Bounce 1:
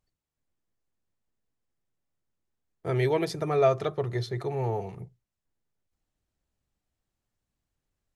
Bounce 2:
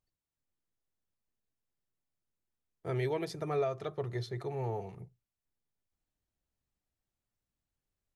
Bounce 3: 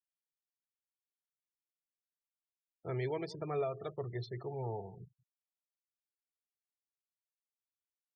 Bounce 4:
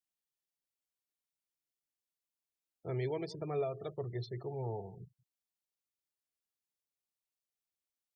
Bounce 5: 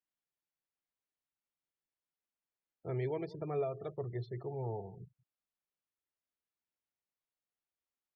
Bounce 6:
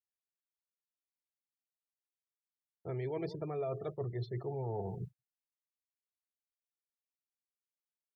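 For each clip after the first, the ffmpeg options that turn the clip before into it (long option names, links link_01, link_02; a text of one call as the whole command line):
ffmpeg -i in.wav -af "alimiter=limit=-17dB:level=0:latency=1:release=378,volume=-6.5dB" out.wav
ffmpeg -i in.wav -filter_complex "[0:a]asplit=2[link_01][link_02];[link_02]adelay=186.6,volume=-20dB,highshelf=frequency=4000:gain=-4.2[link_03];[link_01][link_03]amix=inputs=2:normalize=0,afftfilt=real='re*gte(hypot(re,im),0.00631)':imag='im*gte(hypot(re,im),0.00631)':win_size=1024:overlap=0.75,volume=-3.5dB" out.wav
ffmpeg -i in.wav -af "equalizer=frequency=1400:width=1:gain=-6,volume=1dB" out.wav
ffmpeg -i in.wav -af "lowpass=2500" out.wav
ffmpeg -i in.wav -af "agate=range=-33dB:threshold=-49dB:ratio=3:detection=peak,areverse,acompressor=threshold=-46dB:ratio=6,areverse,volume=10.5dB" out.wav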